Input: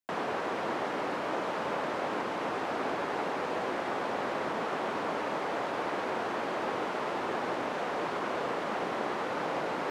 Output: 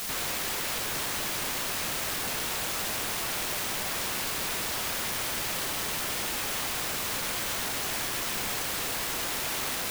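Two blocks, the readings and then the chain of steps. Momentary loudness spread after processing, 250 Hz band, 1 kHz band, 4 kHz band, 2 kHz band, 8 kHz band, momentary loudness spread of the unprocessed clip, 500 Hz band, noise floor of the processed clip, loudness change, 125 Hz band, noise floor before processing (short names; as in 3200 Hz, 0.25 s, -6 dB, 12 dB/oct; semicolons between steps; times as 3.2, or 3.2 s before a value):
0 LU, -4.5 dB, -5.0 dB, +12.5 dB, +3.0 dB, +23.0 dB, 0 LU, -7.5 dB, -32 dBFS, +4.0 dB, +4.0 dB, -35 dBFS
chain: wrapped overs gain 31 dB; requantised 6-bit, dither triangular; gain +1.5 dB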